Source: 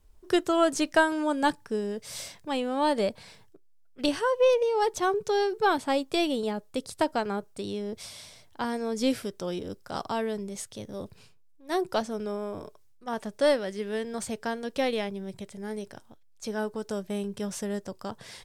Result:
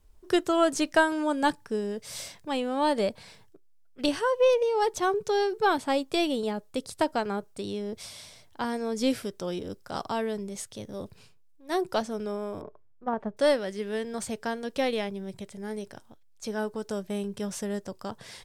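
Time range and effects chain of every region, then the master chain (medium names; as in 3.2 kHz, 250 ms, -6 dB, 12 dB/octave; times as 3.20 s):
12.61–13.37 s: low-pass 1.2 kHz + transient shaper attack +7 dB, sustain +2 dB
whole clip: none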